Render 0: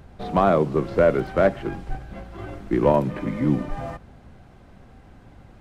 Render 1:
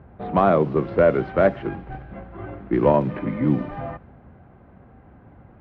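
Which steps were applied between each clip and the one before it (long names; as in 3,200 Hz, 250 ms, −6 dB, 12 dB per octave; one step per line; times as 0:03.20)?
low-pass filter 3,100 Hz 12 dB per octave
low-pass that shuts in the quiet parts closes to 1,600 Hz, open at −13.5 dBFS
high-pass filter 61 Hz
level +1 dB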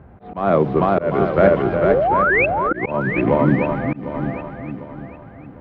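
sound drawn into the spectrogram rise, 0:01.85–0:02.46, 350–2,700 Hz −20 dBFS
feedback echo with a long and a short gap by turns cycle 751 ms, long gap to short 1.5 to 1, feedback 31%, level −3.5 dB
volume swells 215 ms
level +3 dB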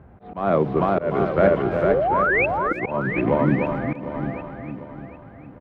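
far-end echo of a speakerphone 340 ms, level −15 dB
level −3.5 dB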